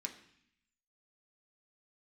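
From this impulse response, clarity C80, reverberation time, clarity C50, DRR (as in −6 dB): 13.5 dB, 0.65 s, 11.0 dB, 2.0 dB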